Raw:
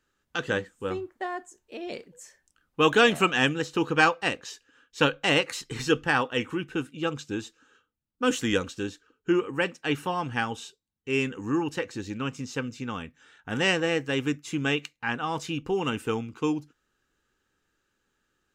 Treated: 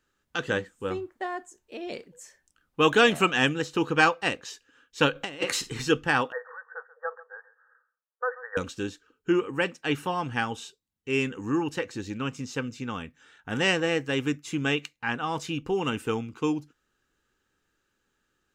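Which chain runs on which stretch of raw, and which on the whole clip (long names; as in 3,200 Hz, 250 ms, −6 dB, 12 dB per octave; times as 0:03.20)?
0:05.15–0:05.70: parametric band 280 Hz +3 dB 1.3 octaves + flutter between parallel walls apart 9 metres, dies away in 0.22 s + compressor whose output falls as the input rises −29 dBFS, ratio −0.5
0:06.32–0:08.57: linear-phase brick-wall band-pass 450–1,900 Hz + tilt shelving filter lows −5 dB, about 1,500 Hz + single-tap delay 136 ms −17.5 dB
whole clip: no processing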